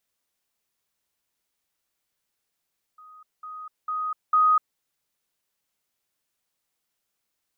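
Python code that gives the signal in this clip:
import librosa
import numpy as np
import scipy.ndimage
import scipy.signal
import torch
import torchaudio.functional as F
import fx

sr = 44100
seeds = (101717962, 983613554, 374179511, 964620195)

y = fx.level_ladder(sr, hz=1250.0, from_db=-45.5, step_db=10.0, steps=4, dwell_s=0.25, gap_s=0.2)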